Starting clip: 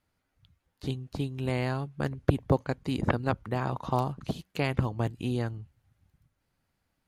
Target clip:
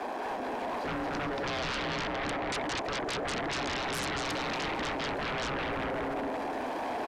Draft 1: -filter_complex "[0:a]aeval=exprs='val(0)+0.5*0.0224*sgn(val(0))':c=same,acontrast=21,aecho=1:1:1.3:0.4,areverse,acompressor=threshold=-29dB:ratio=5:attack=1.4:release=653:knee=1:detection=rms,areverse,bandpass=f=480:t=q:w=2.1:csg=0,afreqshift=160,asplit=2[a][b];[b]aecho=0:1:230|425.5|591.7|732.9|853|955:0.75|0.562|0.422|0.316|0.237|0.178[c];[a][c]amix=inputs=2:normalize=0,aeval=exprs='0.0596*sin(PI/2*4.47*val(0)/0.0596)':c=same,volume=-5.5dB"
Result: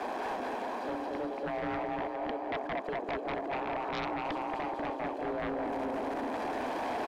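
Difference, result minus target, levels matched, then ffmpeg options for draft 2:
compressor: peak gain reduction +9 dB
-filter_complex "[0:a]aeval=exprs='val(0)+0.5*0.0224*sgn(val(0))':c=same,acontrast=21,aecho=1:1:1.3:0.4,areverse,acompressor=threshold=-18dB:ratio=5:attack=1.4:release=653:knee=1:detection=rms,areverse,bandpass=f=480:t=q:w=2.1:csg=0,afreqshift=160,asplit=2[a][b];[b]aecho=0:1:230|425.5|591.7|732.9|853|955:0.75|0.562|0.422|0.316|0.237|0.178[c];[a][c]amix=inputs=2:normalize=0,aeval=exprs='0.0596*sin(PI/2*4.47*val(0)/0.0596)':c=same,volume=-5.5dB"

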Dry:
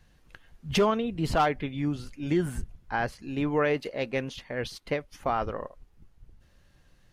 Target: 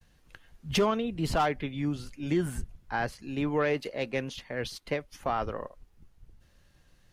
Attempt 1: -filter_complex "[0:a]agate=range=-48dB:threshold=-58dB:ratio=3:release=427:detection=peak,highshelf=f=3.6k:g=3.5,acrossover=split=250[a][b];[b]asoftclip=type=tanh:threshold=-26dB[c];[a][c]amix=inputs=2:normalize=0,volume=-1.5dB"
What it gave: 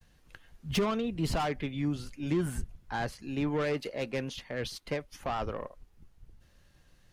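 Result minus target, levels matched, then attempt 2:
soft clip: distortion +13 dB
-filter_complex "[0:a]agate=range=-48dB:threshold=-58dB:ratio=3:release=427:detection=peak,highshelf=f=3.6k:g=3.5,acrossover=split=250[a][b];[b]asoftclip=type=tanh:threshold=-15dB[c];[a][c]amix=inputs=2:normalize=0,volume=-1.5dB"

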